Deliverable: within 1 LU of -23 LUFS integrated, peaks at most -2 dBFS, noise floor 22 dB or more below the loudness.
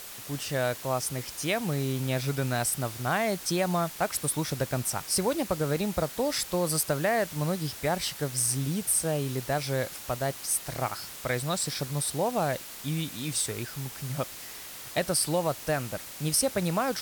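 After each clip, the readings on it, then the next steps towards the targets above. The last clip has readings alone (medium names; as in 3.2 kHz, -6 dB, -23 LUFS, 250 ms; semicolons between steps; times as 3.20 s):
noise floor -43 dBFS; noise floor target -51 dBFS; loudness -29.0 LUFS; peak level -13.0 dBFS; loudness target -23.0 LUFS
-> noise print and reduce 8 dB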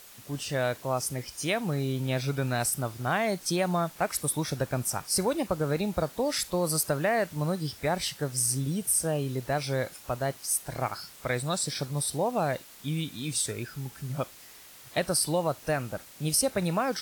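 noise floor -50 dBFS; noise floor target -52 dBFS
-> noise print and reduce 6 dB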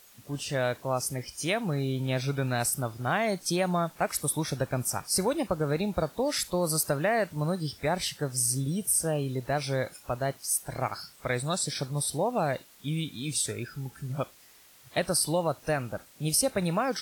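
noise floor -56 dBFS; loudness -29.5 LUFS; peak level -13.0 dBFS; loudness target -23.0 LUFS
-> trim +6.5 dB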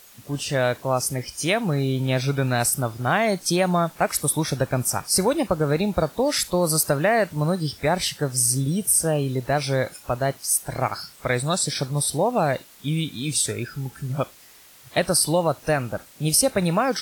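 loudness -23.0 LUFS; peak level -6.5 dBFS; noise floor -49 dBFS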